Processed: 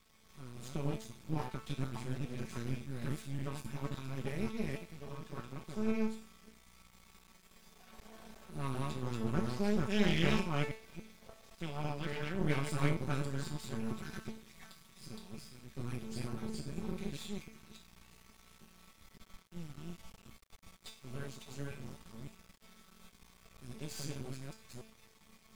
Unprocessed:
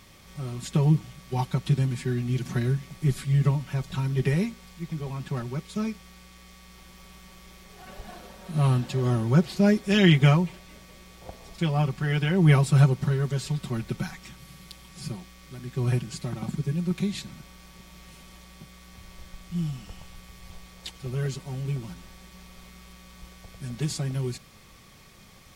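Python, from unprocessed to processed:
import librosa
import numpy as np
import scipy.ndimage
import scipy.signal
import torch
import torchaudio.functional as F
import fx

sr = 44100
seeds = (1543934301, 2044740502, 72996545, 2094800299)

y = fx.reverse_delay(x, sr, ms=282, wet_db=0.0)
y = fx.comb_fb(y, sr, f0_hz=220.0, decay_s=0.46, harmonics='all', damping=0.0, mix_pct=90)
y = np.maximum(y, 0.0)
y = y * 10.0 ** (4.0 / 20.0)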